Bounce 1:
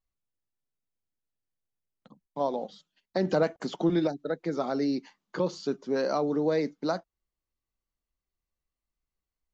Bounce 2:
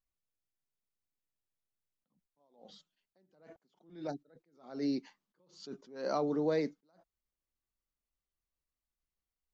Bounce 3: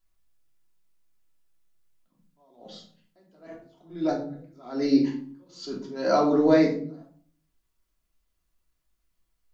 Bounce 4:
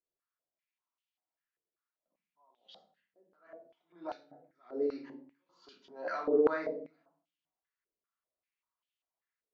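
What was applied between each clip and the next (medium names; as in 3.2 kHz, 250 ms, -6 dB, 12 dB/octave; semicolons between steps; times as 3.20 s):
attacks held to a fixed rise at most 120 dB/s; trim -4.5 dB
simulated room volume 530 m³, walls furnished, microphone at 3 m; trim +7.5 dB
step-sequenced band-pass 5.1 Hz 450–3000 Hz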